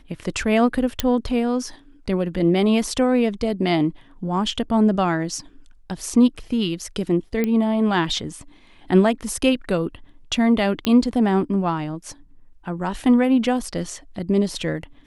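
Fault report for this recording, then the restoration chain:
1.00 s: pop -5 dBFS
7.44 s: pop -10 dBFS
10.85 s: pop -8 dBFS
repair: de-click

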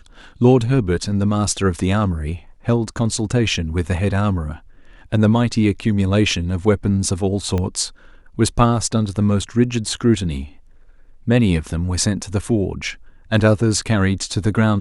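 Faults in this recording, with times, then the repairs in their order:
7.58 s: pop -11 dBFS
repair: de-click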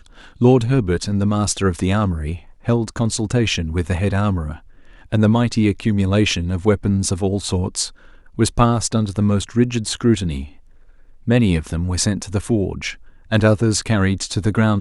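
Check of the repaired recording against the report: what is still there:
7.58 s: pop

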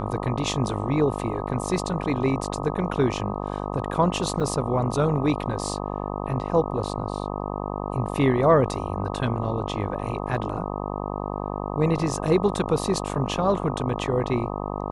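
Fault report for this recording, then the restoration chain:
buzz 50 Hz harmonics 25 -30 dBFS
4.40–4.41 s: dropout 5.3 ms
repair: de-hum 50 Hz, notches 25; interpolate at 4.40 s, 5.3 ms

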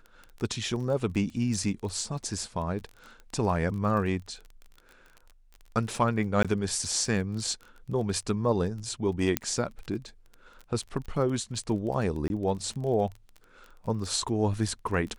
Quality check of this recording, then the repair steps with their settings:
crackle 27 per s -36 dBFS
6.43–6.45 s: dropout 16 ms
9.37 s: pop -8 dBFS
12.28–12.30 s: dropout 21 ms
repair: de-click; interpolate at 6.43 s, 16 ms; interpolate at 12.28 s, 21 ms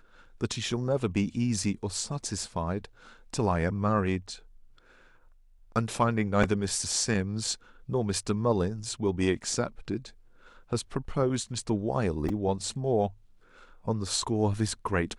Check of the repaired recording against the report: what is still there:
nothing left

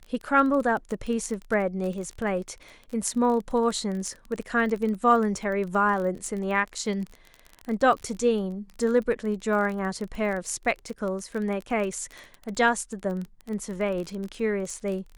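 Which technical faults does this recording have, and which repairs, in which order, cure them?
crackle 24 per s -31 dBFS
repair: de-click

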